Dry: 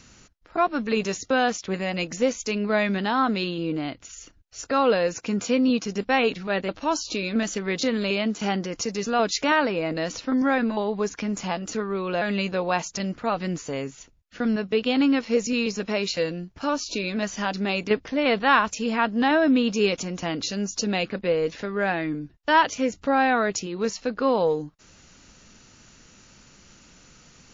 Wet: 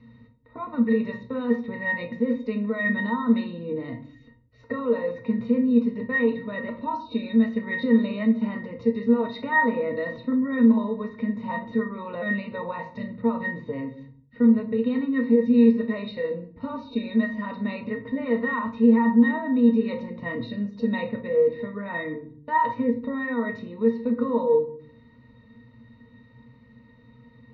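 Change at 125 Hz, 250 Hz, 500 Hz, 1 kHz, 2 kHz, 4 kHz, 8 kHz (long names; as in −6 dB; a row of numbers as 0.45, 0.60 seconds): −2.0 dB, +3.5 dB, −1.5 dB, −5.5 dB, −2.5 dB, below −10 dB, can't be measured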